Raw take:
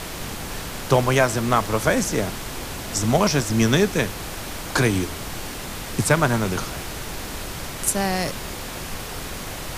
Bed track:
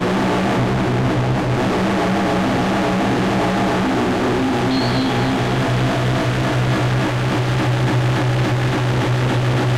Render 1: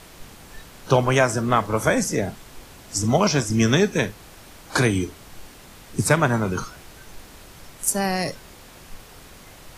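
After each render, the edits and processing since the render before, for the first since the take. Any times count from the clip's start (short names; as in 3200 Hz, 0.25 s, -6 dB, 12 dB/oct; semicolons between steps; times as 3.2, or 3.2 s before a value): noise print and reduce 13 dB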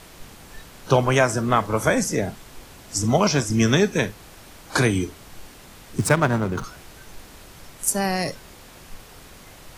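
5.98–6.64 backlash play -26 dBFS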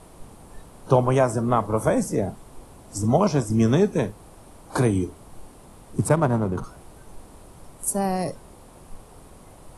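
steep low-pass 11000 Hz 36 dB/oct; band shelf 3200 Hz -12 dB 2.6 oct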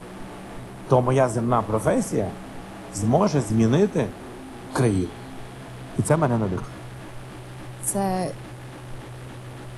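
add bed track -21.5 dB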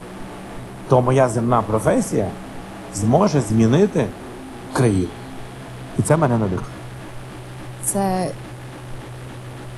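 gain +4 dB; limiter -3 dBFS, peak gain reduction 1 dB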